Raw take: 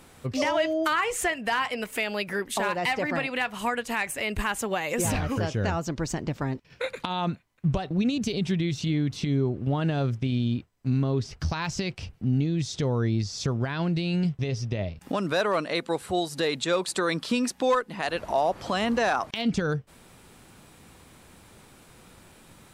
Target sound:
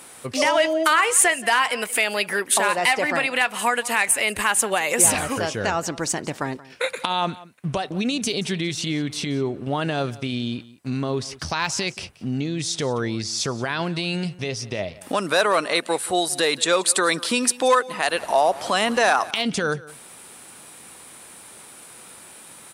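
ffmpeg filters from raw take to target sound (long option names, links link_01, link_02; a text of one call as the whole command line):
ffmpeg -i in.wav -af "highpass=frequency=550:poles=1,equalizer=frequency=9500:width_type=o:width=0.46:gain=11.5,aecho=1:1:178:0.106,volume=8dB" out.wav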